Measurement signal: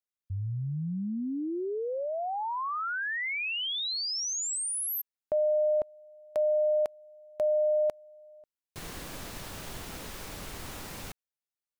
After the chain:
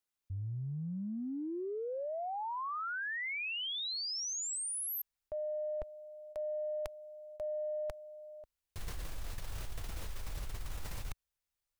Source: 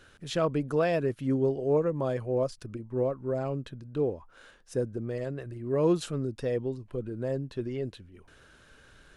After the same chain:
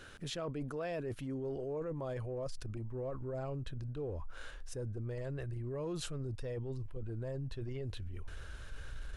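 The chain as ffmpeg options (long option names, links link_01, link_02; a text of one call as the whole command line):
ffmpeg -i in.wav -af "asubboost=boost=9:cutoff=71,areverse,acompressor=threshold=-41dB:ratio=6:attack=2.8:release=73:knee=1:detection=peak,areverse,volume=3.5dB" out.wav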